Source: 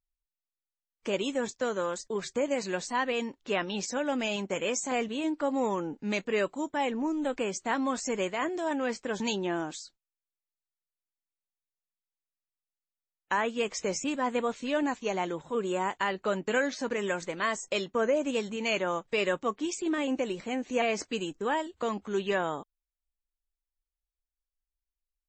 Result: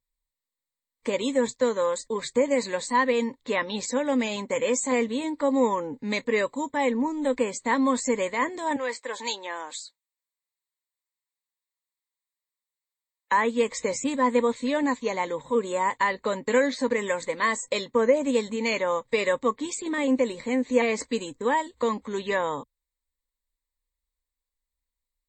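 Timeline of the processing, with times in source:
0:08.76–0:13.32: high-pass filter 670 Hz
whole clip: EQ curve with evenly spaced ripples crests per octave 1, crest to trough 12 dB; level +2.5 dB

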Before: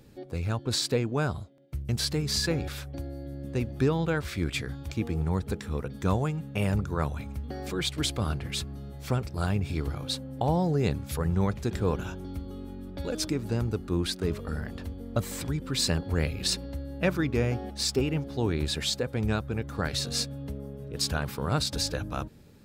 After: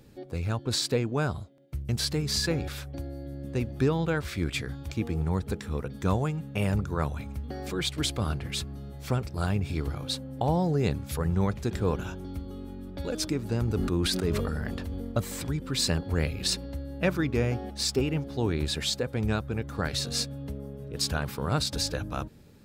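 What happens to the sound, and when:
0:13.61–0:15.12: level that may fall only so fast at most 21 dB per second

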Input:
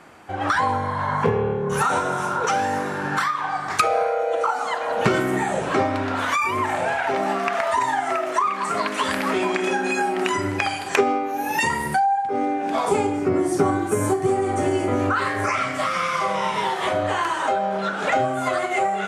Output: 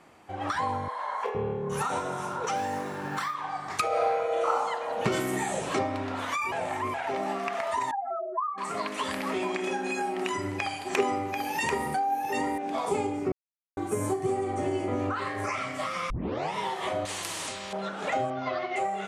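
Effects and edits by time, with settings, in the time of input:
0:00.88–0:01.35: high-pass filter 480 Hz 24 dB per octave
0:02.56–0:03.35: floating-point word with a short mantissa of 4 bits
0:03.88–0:04.52: thrown reverb, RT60 0.94 s, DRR −5 dB
0:05.12–0:05.79: high-shelf EQ 3,400 Hz +10.5 dB
0:06.52–0:06.94: reverse
0:07.91–0:08.58: expanding power law on the bin magnitudes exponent 3.5
0:10.11–0:12.58: single-tap delay 739 ms −5 dB
0:13.32–0:13.77: silence
0:14.44–0:15.38: high-shelf EQ 7,500 Hz −8 dB
0:16.10: tape start 0.44 s
0:17.05–0:17.73: every bin compressed towards the loudest bin 4 to 1
0:18.30–0:18.76: Butterworth low-pass 5,700 Hz 72 dB per octave
whole clip: parametric band 1,500 Hz −6.5 dB 0.32 octaves; level −7.5 dB

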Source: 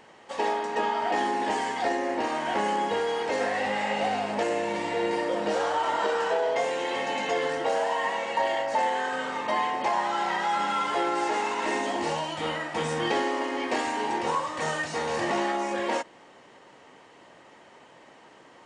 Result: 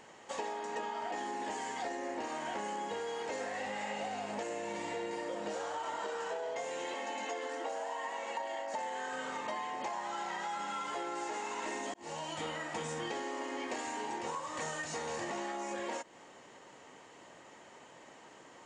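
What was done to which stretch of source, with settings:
0:06.94–0:08.74: Chebyshev high-pass with heavy ripple 210 Hz, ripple 3 dB
0:11.94–0:12.50: fade in
whole clip: parametric band 7,000 Hz +9.5 dB 0.4 octaves; downward compressor, threshold −33 dBFS; level −3 dB

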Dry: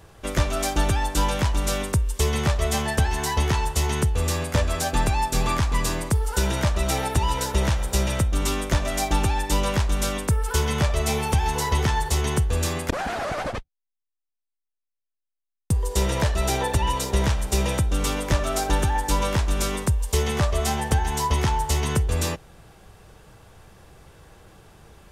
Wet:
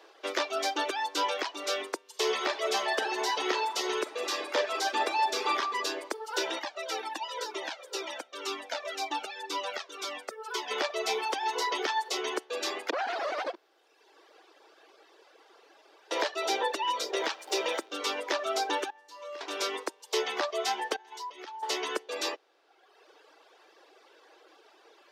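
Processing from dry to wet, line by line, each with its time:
0:02.06–0:05.59: thrown reverb, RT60 1.5 s, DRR 2.5 dB
0:06.59–0:10.71: flanger whose copies keep moving one way falling 2 Hz
0:13.55–0:16.11: fill with room tone
0:17.15–0:17.97: converter with a step at zero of −33 dBFS
0:18.90–0:19.41: tuned comb filter 84 Hz, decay 1.9 s, mix 90%
0:20.96–0:21.63: output level in coarse steps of 17 dB
whole clip: Butterworth high-pass 320 Hz 48 dB per octave; high shelf with overshoot 6,600 Hz −11.5 dB, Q 1.5; reverb reduction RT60 1.2 s; level −2 dB

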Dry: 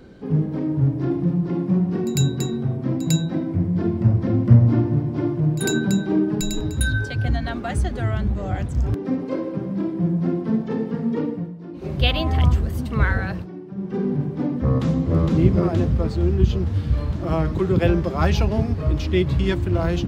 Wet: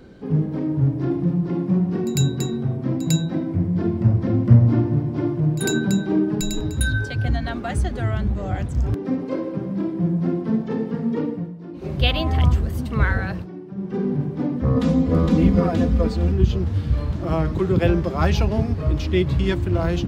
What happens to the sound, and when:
0:14.76–0:16.32: comb filter 4.1 ms, depth 95%

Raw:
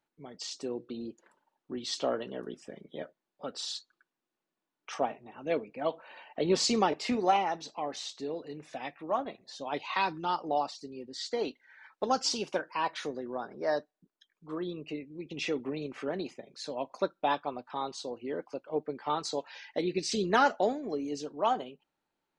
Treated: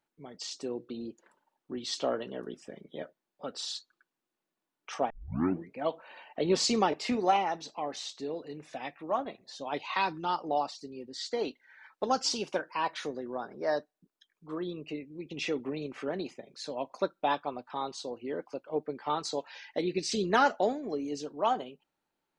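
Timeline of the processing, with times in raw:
0:05.10: tape start 0.66 s

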